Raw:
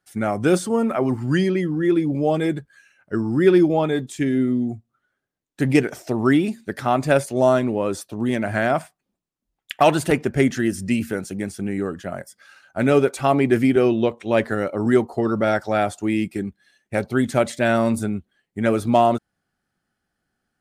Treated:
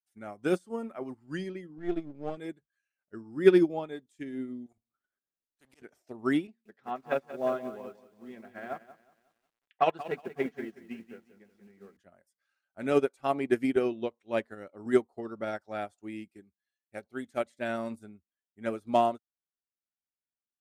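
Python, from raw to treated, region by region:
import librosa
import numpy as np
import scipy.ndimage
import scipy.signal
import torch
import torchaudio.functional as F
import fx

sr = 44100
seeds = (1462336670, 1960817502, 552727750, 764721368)

y = fx.chain(x, sr, fx.halfwave_gain(db=-7.0),
    fx.lowpass(hz=7100.0, slope=12),
    fx.low_shelf(hz=250.0, db=3.5), at=(1.78, 2.37))
y = fx.chain(y, sr, fx.level_steps(step_db=10),
    fx.auto_swell(attack_ms=119.0),
    fx.spectral_comp(ratio=2.0), at=(4.66, 5.82))
y = fx.chain(y, sr, fx.bandpass_edges(low_hz=170.0, high_hz=3000.0),
    fx.notch_comb(f0_hz=300.0),
    fx.echo_crushed(ms=182, feedback_pct=55, bits=7, wet_db=-6.0), at=(6.47, 11.97))
y = fx.chain(y, sr, fx.low_shelf(hz=270.0, db=-3.5),
    fx.notch(hz=970.0, q=13.0), at=(16.4, 17.46))
y = fx.peak_eq(y, sr, hz=130.0, db=-8.0, octaves=0.57)
y = fx.upward_expand(y, sr, threshold_db=-30.0, expansion=2.5)
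y = y * 10.0 ** (-2.0 / 20.0)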